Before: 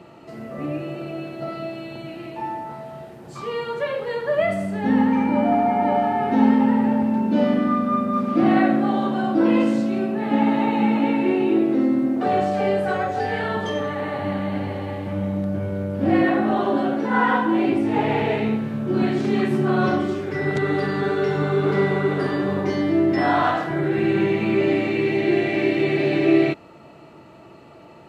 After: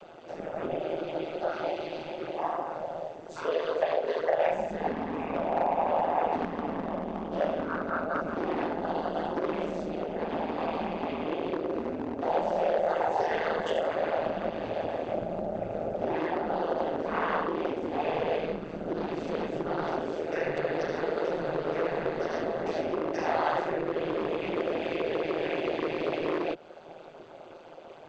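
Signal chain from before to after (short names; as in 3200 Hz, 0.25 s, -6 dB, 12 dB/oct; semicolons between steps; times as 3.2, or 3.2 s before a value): noise vocoder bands 16; graphic EQ 500/1000/2000/4000 Hz +3/-10/-9/-7 dB; AM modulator 160 Hz, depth 60%; in parallel at -5.5 dB: wavefolder -18.5 dBFS; on the sum: compressor, threshold -25 dBFS, peak gain reduction 13 dB; three-band isolator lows -18 dB, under 530 Hz, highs -19 dB, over 5500 Hz; gain +7.5 dB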